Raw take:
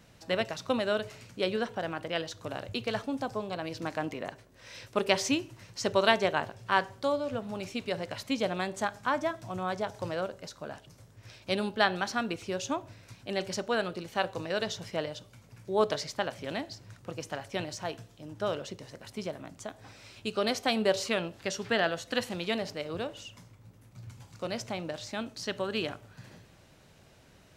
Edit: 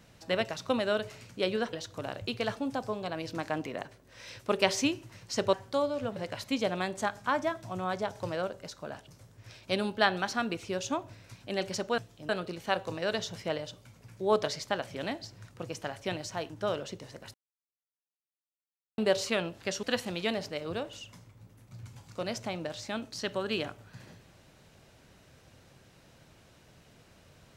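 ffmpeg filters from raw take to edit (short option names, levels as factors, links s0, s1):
-filter_complex "[0:a]asplit=10[s0][s1][s2][s3][s4][s5][s6][s7][s8][s9];[s0]atrim=end=1.732[s10];[s1]atrim=start=2.198:end=6.002[s11];[s2]atrim=start=6.828:end=7.462[s12];[s3]atrim=start=7.948:end=13.772[s13];[s4]atrim=start=17.978:end=18.292[s14];[s5]atrim=start=13.768:end=17.982[s15];[s6]atrim=start=18.288:end=19.13,asetpts=PTS-STARTPTS,afade=t=out:st=0.838:d=0.004:c=hsin[s16];[s7]atrim=start=19.13:end=20.77,asetpts=PTS-STARTPTS,volume=0[s17];[s8]atrim=start=20.77:end=21.622,asetpts=PTS-STARTPTS,afade=t=in:d=0.004:c=hsin[s18];[s9]atrim=start=22.068[s19];[s10][s11]acrossfade=d=0.004:c1=hsin:c2=hsin[s20];[s20][s12]acrossfade=d=0.004:c1=hsin:c2=hsin[s21];[s21][s13]acrossfade=d=0.004:c1=hsin:c2=hsin[s22];[s22][s14]acrossfade=d=0.004:c1=hsin:c2=hsin[s23];[s23][s15]acrossfade=d=0.004:c1=hsin:c2=hsin[s24];[s16][s17][s18]concat=n=3:v=0:a=1[s25];[s24][s25]acrossfade=d=0.004:c1=hsin:c2=hsin[s26];[s26][s19]acrossfade=d=0.004:c1=hsin:c2=hsin"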